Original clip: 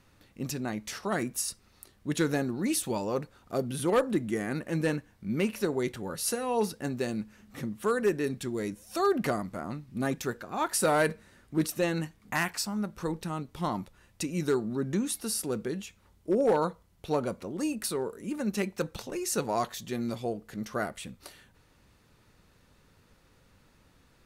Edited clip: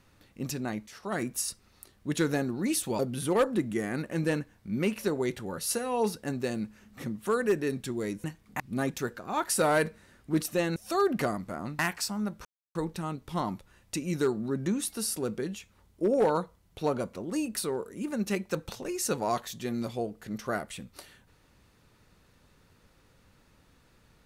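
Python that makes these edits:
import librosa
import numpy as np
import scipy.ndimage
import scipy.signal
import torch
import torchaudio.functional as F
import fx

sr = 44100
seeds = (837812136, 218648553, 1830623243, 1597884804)

y = fx.edit(x, sr, fx.fade_in_from(start_s=0.87, length_s=0.38, floor_db=-14.0),
    fx.cut(start_s=2.99, length_s=0.57),
    fx.swap(start_s=8.81, length_s=1.03, other_s=12.0, other_length_s=0.36),
    fx.insert_silence(at_s=13.02, length_s=0.3), tone=tone)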